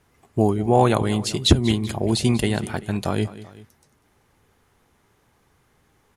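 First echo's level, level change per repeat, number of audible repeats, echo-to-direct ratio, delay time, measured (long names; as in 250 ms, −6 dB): −16.5 dB, −5.0 dB, 2, −15.5 dB, 193 ms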